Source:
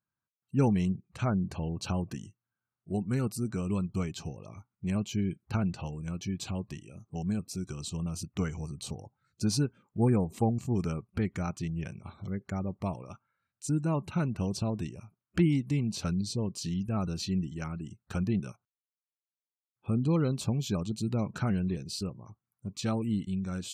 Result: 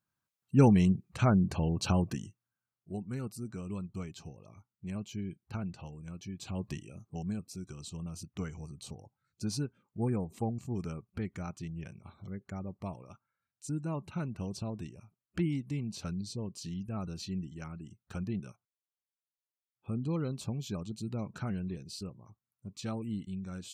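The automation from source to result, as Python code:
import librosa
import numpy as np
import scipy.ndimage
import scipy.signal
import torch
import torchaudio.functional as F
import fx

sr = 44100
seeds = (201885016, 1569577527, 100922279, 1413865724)

y = fx.gain(x, sr, db=fx.line((2.04, 3.5), (3.05, -8.0), (6.39, -8.0), (6.7, 2.5), (7.46, -6.5)))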